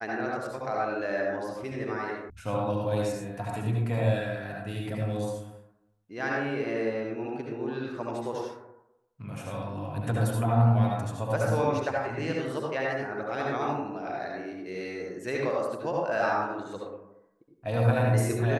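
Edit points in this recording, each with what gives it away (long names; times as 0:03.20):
0:02.30: cut off before it has died away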